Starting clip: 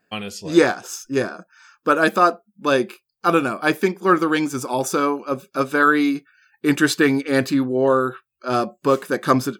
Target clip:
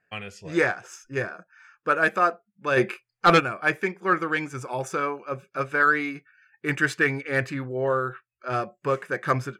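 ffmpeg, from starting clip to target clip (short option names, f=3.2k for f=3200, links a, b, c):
-filter_complex "[0:a]equalizer=f=125:t=o:w=1:g=5,equalizer=f=250:t=o:w=1:g=-12,equalizer=f=1k:t=o:w=1:g=-4,equalizer=f=2k:t=o:w=1:g=8,equalizer=f=4k:t=o:w=1:g=-10,adynamicsmooth=sensitivity=1:basefreq=6.4k,asplit=3[a][b][c];[a]afade=t=out:st=2.76:d=0.02[d];[b]aeval=exprs='0.501*sin(PI/2*2*val(0)/0.501)':c=same,afade=t=in:st=2.76:d=0.02,afade=t=out:st=3.39:d=0.02[e];[c]afade=t=in:st=3.39:d=0.02[f];[d][e][f]amix=inputs=3:normalize=0,volume=-4dB"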